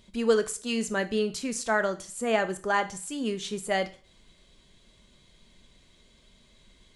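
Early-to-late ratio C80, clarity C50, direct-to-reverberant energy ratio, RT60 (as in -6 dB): 20.5 dB, 16.0 dB, 10.5 dB, 0.40 s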